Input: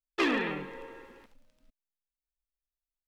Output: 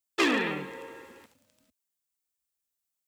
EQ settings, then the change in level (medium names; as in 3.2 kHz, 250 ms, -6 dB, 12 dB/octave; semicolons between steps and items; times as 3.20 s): high-pass 71 Hz 24 dB/octave; treble shelf 5.5 kHz +10 dB; peaking EQ 7.6 kHz +4 dB 0.34 oct; +2.0 dB